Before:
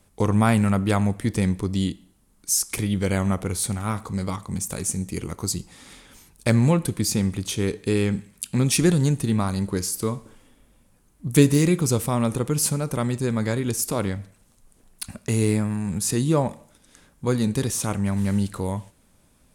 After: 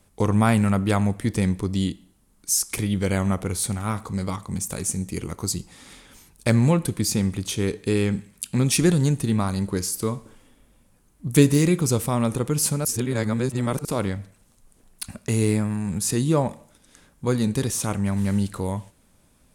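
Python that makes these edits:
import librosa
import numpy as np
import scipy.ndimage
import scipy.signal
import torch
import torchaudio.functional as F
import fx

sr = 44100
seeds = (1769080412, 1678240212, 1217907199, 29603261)

y = fx.edit(x, sr, fx.reverse_span(start_s=12.85, length_s=1.0), tone=tone)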